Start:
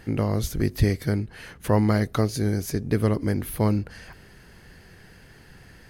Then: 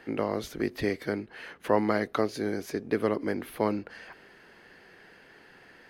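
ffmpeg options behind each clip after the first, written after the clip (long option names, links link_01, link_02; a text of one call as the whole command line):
ffmpeg -i in.wav -filter_complex "[0:a]acrossover=split=250 4000:gain=0.0794 1 0.224[link_01][link_02][link_03];[link_01][link_02][link_03]amix=inputs=3:normalize=0" out.wav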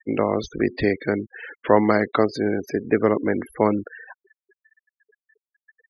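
ffmpeg -i in.wav -af "afftfilt=real='re*gte(hypot(re,im),0.0141)':imag='im*gte(hypot(re,im),0.0141)':win_size=1024:overlap=0.75,volume=8dB" out.wav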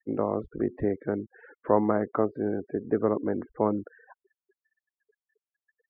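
ffmpeg -i in.wav -af "lowpass=frequency=1300:width=0.5412,lowpass=frequency=1300:width=1.3066,volume=-6dB" out.wav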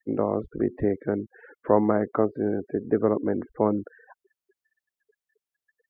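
ffmpeg -i in.wav -af "equalizer=frequency=1100:width=1.5:gain=-2.5,volume=3dB" out.wav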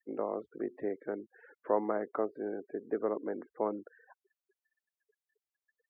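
ffmpeg -i in.wav -af "highpass=350,volume=-8dB" out.wav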